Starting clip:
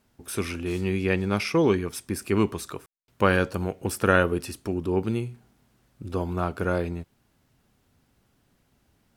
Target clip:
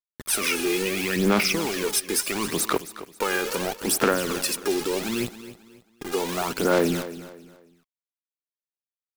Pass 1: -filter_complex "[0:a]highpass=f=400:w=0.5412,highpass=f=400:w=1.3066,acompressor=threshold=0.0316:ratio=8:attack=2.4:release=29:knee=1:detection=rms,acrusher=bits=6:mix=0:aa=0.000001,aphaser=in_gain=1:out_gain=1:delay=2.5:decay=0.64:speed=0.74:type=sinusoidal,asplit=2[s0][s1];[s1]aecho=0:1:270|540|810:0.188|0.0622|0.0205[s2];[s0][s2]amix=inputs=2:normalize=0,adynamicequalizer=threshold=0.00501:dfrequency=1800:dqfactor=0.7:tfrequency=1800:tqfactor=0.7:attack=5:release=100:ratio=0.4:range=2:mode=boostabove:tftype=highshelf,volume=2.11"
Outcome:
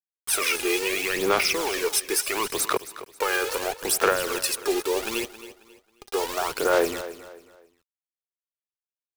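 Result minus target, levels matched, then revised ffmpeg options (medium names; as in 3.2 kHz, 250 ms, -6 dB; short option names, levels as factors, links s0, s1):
250 Hz band -6.5 dB
-filter_complex "[0:a]highpass=f=200:w=0.5412,highpass=f=200:w=1.3066,acompressor=threshold=0.0316:ratio=8:attack=2.4:release=29:knee=1:detection=rms,acrusher=bits=6:mix=0:aa=0.000001,aphaser=in_gain=1:out_gain=1:delay=2.5:decay=0.64:speed=0.74:type=sinusoidal,asplit=2[s0][s1];[s1]aecho=0:1:270|540|810:0.188|0.0622|0.0205[s2];[s0][s2]amix=inputs=2:normalize=0,adynamicequalizer=threshold=0.00501:dfrequency=1800:dqfactor=0.7:tfrequency=1800:tqfactor=0.7:attack=5:release=100:ratio=0.4:range=2:mode=boostabove:tftype=highshelf,volume=2.11"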